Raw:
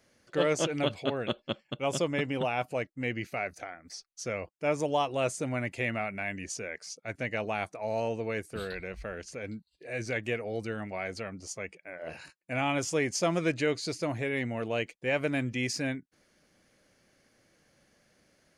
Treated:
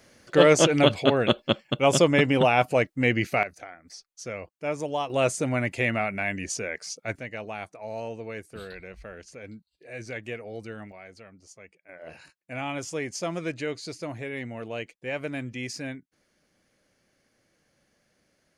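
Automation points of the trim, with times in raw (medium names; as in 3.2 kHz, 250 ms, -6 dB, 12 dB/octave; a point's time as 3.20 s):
+10 dB
from 3.43 s -1 dB
from 5.10 s +6 dB
from 7.19 s -3.5 dB
from 10.92 s -10.5 dB
from 11.89 s -3 dB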